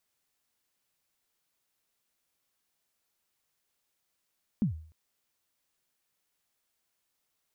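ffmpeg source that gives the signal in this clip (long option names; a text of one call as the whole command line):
ffmpeg -f lavfi -i "aevalsrc='0.0944*pow(10,-3*t/0.49)*sin(2*PI*(240*0.114/log(79/240)*(exp(log(79/240)*min(t,0.114)/0.114)-1)+79*max(t-0.114,0)))':duration=0.3:sample_rate=44100" out.wav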